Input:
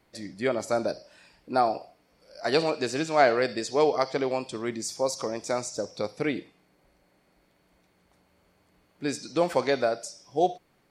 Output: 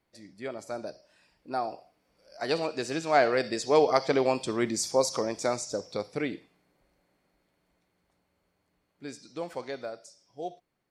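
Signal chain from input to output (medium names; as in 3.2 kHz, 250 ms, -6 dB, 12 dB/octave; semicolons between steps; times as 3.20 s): Doppler pass-by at 4.57 s, 5 m/s, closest 4.3 m; trim +3.5 dB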